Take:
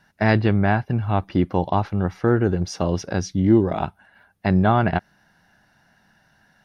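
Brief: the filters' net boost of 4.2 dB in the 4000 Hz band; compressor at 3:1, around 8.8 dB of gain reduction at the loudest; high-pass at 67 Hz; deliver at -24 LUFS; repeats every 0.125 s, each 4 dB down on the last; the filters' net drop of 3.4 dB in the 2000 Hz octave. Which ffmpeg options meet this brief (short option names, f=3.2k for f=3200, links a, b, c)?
-af "highpass=67,equalizer=f=2k:t=o:g=-6,equalizer=f=4k:t=o:g=7.5,acompressor=threshold=-22dB:ratio=3,aecho=1:1:125|250|375|500|625|750|875|1000|1125:0.631|0.398|0.25|0.158|0.0994|0.0626|0.0394|0.0249|0.0157,volume=1.5dB"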